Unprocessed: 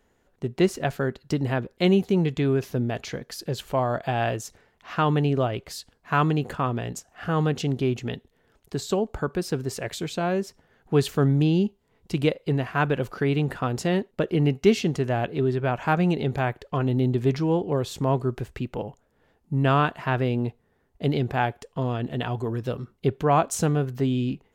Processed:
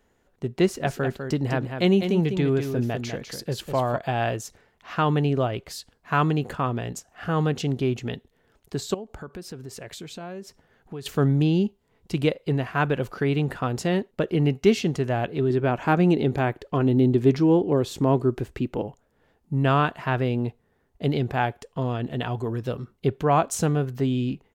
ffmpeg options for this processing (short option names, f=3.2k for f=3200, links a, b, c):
-filter_complex "[0:a]asplit=3[a][b][c];[a]afade=t=out:st=0.85:d=0.02[d];[b]aecho=1:1:200:0.422,afade=t=in:st=0.85:d=0.02,afade=t=out:st=3.96:d=0.02[e];[c]afade=t=in:st=3.96:d=0.02[f];[d][e][f]amix=inputs=3:normalize=0,asettb=1/sr,asplit=3[g][h][i];[g]atrim=end=8.944[j];[h]atrim=start=8.94:end=11.06,asetpts=PTS-STARTPTS,afade=t=in:d=0.004:c=qsin,afade=t=out:st=2.116:d=0.004:c=qsin,acompressor=threshold=-37dB:ratio=3:attack=3.2:release=140:knee=1:detection=peak[k];[i]atrim=start=11.056[l];[j][k]acrossfade=d=0.004:c1=hsin:c2=qsin[m];[m][l]acrossfade=d=0.004:c1=qsin:c2=hsin,asettb=1/sr,asplit=3[n][o][p];[n]atrim=end=15.504[q];[o]atrim=start=15.5:end=18.87,asetpts=PTS-STARTPTS,afade=t=in:d=0.004:c=qsin,afade=t=out:st=3.366:d=0.004:c=qsin,equalizer=f=310:w=1.5:g=7[r];[p]atrim=start=18.866[s];[q][r]acrossfade=d=0.004:c1=hsin:c2=qsin[t];[t][s]acrossfade=d=0.004:c1=qsin:c2=hsin"